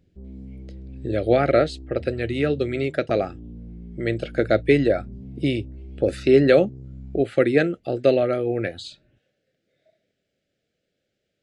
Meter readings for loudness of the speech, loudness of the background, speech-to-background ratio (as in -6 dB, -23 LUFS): -22.0 LUFS, -40.0 LUFS, 18.0 dB